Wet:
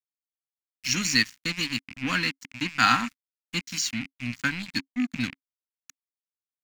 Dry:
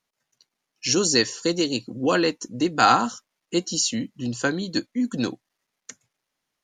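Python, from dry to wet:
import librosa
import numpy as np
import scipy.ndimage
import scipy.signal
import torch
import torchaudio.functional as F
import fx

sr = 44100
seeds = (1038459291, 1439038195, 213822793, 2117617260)

y = fx.rattle_buzz(x, sr, strikes_db=-37.0, level_db=-25.0)
y = np.sign(y) * np.maximum(np.abs(y) - 10.0 ** (-30.5 / 20.0), 0.0)
y = fx.curve_eq(y, sr, hz=(270.0, 390.0, 2100.0, 3100.0, 8700.0), db=(0, -24, 7, 1, -4))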